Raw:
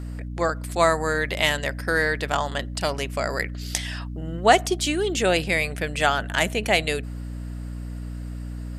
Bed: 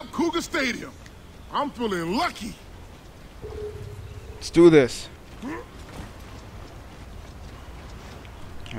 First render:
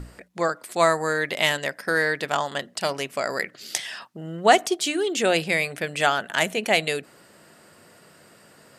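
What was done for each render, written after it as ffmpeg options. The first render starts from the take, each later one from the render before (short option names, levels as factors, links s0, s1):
-af "bandreject=f=60:t=h:w=6,bandreject=f=120:t=h:w=6,bandreject=f=180:t=h:w=6,bandreject=f=240:t=h:w=6,bandreject=f=300:t=h:w=6"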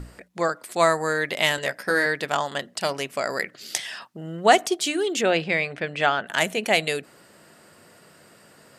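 -filter_complex "[0:a]asettb=1/sr,asplit=3[s0][s1][s2];[s0]atrim=end=1.564[s3];[s1]atrim=start=1.56:end=2.06,asetpts=PTS-STARTPTS,afade=t=in:d=0.004:c=qsin,afade=t=out:st=0.496:d=0.004:c=qsin,asplit=2[s4][s5];[s5]adelay=16,volume=0.562[s6];[s4][s6]amix=inputs=2:normalize=0,atrim=end_sample=22050[s7];[s2]atrim=start=2.056[s8];[s3][s7]acrossfade=d=0.004:c1=hsin:c2=qsin[s9];[s9][s8]acrossfade=d=0.004:c1=qsin:c2=hsin,asettb=1/sr,asplit=3[s10][s11][s12];[s10]atrim=end=5.214[s13];[s11]atrim=start=5.21:end=6.27,asetpts=PTS-STARTPTS,afade=t=in:d=0.004:c=qsin,afade=t=out:st=1.056:d=0.004:c=qsin,lowpass=3600[s14];[s12]atrim=start=6.266[s15];[s13][s14]acrossfade=d=0.004:c1=hsin:c2=qsin[s16];[s16][s15]acrossfade=d=0.004:c1=qsin:c2=hsin"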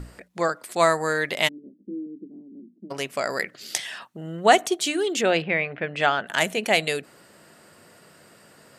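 -filter_complex "[0:a]asplit=3[s0][s1][s2];[s0]afade=t=out:st=1.47:d=0.02[s3];[s1]asuperpass=centerf=260:order=8:qfactor=1.6,afade=t=in:st=1.47:d=0.02,afade=t=out:st=2.9:d=0.02[s4];[s2]afade=t=in:st=2.9:d=0.02[s5];[s3][s4][s5]amix=inputs=3:normalize=0,asettb=1/sr,asplit=3[s6][s7][s8];[s6]atrim=end=3.844[s9];[s7]atrim=start=3.84:end=4.82,asetpts=PTS-STARTPTS,afade=t=in:d=0.004:c=qsin,afade=t=out:st=0.976:d=0.004:c=qsin,bandreject=f=5000:w=6.2[s10];[s8]atrim=start=4.816[s11];[s9][s10]acrossfade=d=0.004:c1=hsin:c2=qsin[s12];[s12][s11]acrossfade=d=0.004:c1=qsin:c2=hsin,asettb=1/sr,asplit=3[s13][s14][s15];[s13]atrim=end=5.424[s16];[s14]atrim=start=5.42:end=5.96,asetpts=PTS-STARTPTS,afade=t=in:d=0.004:c=qsin,afade=t=out:st=0.536:d=0.004:c=qsin,lowpass=f=2900:w=0.5412,lowpass=f=2900:w=1.3066[s17];[s15]atrim=start=5.956[s18];[s16][s17]acrossfade=d=0.004:c1=hsin:c2=qsin[s19];[s19][s18]acrossfade=d=0.004:c1=qsin:c2=hsin"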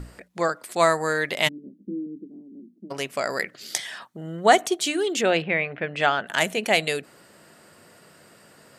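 -filter_complex "[0:a]asettb=1/sr,asplit=3[s0][s1][s2];[s0]atrim=end=1.464[s3];[s1]atrim=start=1.46:end=2.21,asetpts=PTS-STARTPTS,afade=t=in:d=0.004:c=qsin,afade=t=out:st=0.746:d=0.004:c=qsin,equalizer=f=160:w=1.3:g=8[s4];[s2]atrim=start=2.206[s5];[s3][s4]acrossfade=d=0.004:c1=hsin:c2=qsin[s6];[s6][s5]acrossfade=d=0.004:c1=qsin:c2=hsin,asettb=1/sr,asplit=3[s7][s8][s9];[s7]atrim=end=3.694[s10];[s8]atrim=start=3.69:end=4.6,asetpts=PTS-STARTPTS,afade=t=in:d=0.004:c=qsin,afade=t=out:st=0.906:d=0.004:c=qsin,bandreject=f=2700:w=7.1[s11];[s9]atrim=start=4.596[s12];[s10][s11]acrossfade=d=0.004:c1=hsin:c2=qsin[s13];[s13][s12]acrossfade=d=0.004:c1=qsin:c2=hsin,asettb=1/sr,asplit=3[s14][s15][s16];[s14]atrim=end=5.304[s17];[s15]atrim=start=5.3:end=5.78,asetpts=PTS-STARTPTS,afade=t=in:d=0.004:c=qsin,afade=t=out:st=0.476:d=0.004:c=qsin,bandreject=f=4800:w=12[s18];[s16]atrim=start=5.776[s19];[s17][s18]acrossfade=d=0.004:c1=hsin:c2=qsin[s20];[s20][s19]acrossfade=d=0.004:c1=qsin:c2=hsin"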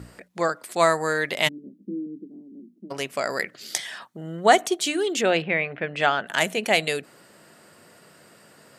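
-af "highpass=86"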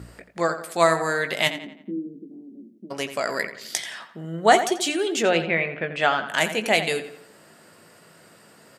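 -filter_complex "[0:a]asplit=2[s0][s1];[s1]adelay=18,volume=0.282[s2];[s0][s2]amix=inputs=2:normalize=0,asplit=2[s3][s4];[s4]adelay=86,lowpass=f=4100:p=1,volume=0.282,asplit=2[s5][s6];[s6]adelay=86,lowpass=f=4100:p=1,volume=0.46,asplit=2[s7][s8];[s8]adelay=86,lowpass=f=4100:p=1,volume=0.46,asplit=2[s9][s10];[s10]adelay=86,lowpass=f=4100:p=1,volume=0.46,asplit=2[s11][s12];[s12]adelay=86,lowpass=f=4100:p=1,volume=0.46[s13];[s3][s5][s7][s9][s11][s13]amix=inputs=6:normalize=0"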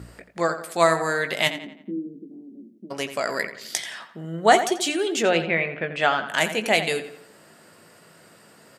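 -af anull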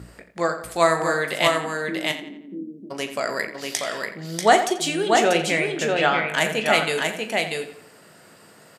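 -filter_complex "[0:a]asplit=2[s0][s1];[s1]adelay=39,volume=0.251[s2];[s0][s2]amix=inputs=2:normalize=0,asplit=2[s3][s4];[s4]aecho=0:1:639:0.668[s5];[s3][s5]amix=inputs=2:normalize=0"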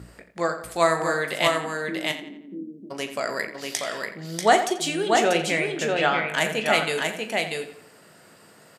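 -af "volume=0.794"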